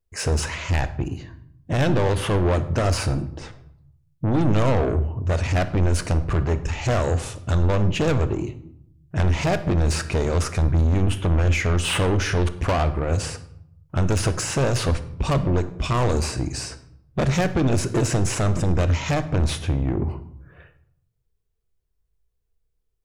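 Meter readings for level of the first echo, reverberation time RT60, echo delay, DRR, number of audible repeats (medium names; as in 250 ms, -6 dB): no echo, 0.75 s, no echo, 11.0 dB, no echo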